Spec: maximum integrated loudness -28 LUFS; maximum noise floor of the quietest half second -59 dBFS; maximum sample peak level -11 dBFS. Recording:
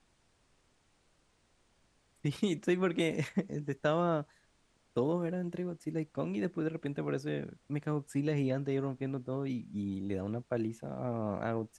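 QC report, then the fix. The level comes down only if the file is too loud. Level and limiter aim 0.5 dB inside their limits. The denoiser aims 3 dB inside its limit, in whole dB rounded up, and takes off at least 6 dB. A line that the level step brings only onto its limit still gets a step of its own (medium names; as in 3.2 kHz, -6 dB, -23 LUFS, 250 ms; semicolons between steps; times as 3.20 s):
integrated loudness -35.0 LUFS: pass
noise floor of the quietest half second -71 dBFS: pass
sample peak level -17.0 dBFS: pass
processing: none needed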